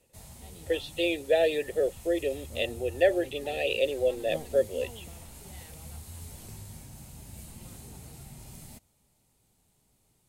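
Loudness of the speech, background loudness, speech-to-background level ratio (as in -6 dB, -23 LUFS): -28.5 LUFS, -45.0 LUFS, 16.5 dB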